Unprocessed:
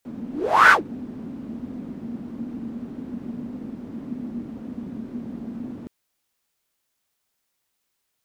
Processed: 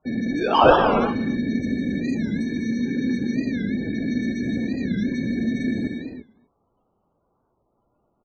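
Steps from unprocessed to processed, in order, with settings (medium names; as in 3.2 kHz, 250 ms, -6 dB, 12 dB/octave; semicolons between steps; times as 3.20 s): median filter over 3 samples; in parallel at +0.5 dB: compressor with a negative ratio -35 dBFS, ratio -1; 2.42–3.36 s: on the sum: comb of notches 660 Hz; sample-and-hold 22×; loudest bins only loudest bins 32; on a send: delay 235 ms -23 dB; on the sum: gated-style reverb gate 380 ms flat, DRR 2 dB; warped record 45 rpm, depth 160 cents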